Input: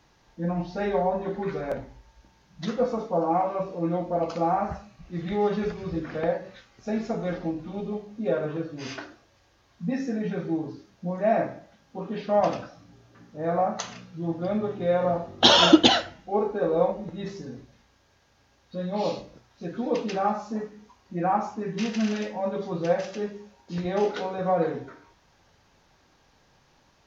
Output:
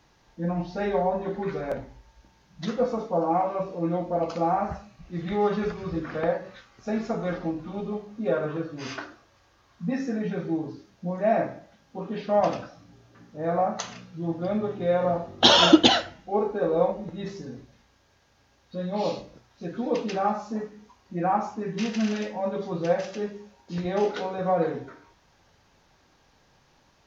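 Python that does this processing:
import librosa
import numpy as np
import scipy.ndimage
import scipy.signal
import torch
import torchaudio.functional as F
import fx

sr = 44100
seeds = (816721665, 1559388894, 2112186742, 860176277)

y = fx.peak_eq(x, sr, hz=1200.0, db=5.5, octaves=0.71, at=(5.27, 10.24))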